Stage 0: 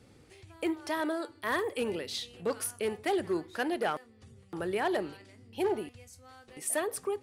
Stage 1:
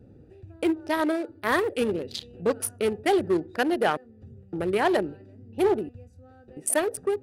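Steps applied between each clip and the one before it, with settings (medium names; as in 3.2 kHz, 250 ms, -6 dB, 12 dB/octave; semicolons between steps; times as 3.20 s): local Wiener filter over 41 samples; trim +8.5 dB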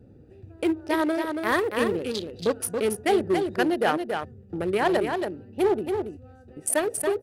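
delay 279 ms -5.5 dB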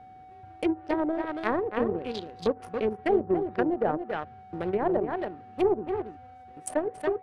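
whistle 750 Hz -37 dBFS; power-law waveshaper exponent 1.4; low-pass that closes with the level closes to 770 Hz, closed at -23.5 dBFS; trim +2 dB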